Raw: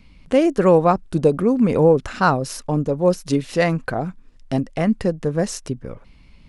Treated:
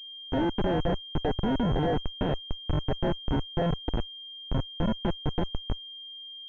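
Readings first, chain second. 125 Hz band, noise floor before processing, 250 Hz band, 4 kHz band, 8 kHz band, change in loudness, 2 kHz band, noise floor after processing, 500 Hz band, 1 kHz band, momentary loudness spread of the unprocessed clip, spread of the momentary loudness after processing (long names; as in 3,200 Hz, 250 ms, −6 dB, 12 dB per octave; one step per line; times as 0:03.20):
−7.0 dB, −49 dBFS, −10.5 dB, +3.0 dB, below −30 dB, −11.0 dB, −12.5 dB, −43 dBFS, −14.0 dB, −11.5 dB, 12 LU, 10 LU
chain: comparator with hysteresis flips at −16.5 dBFS
sample-rate reduction 1,200 Hz, jitter 0%
switching amplifier with a slow clock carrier 3,200 Hz
level −5 dB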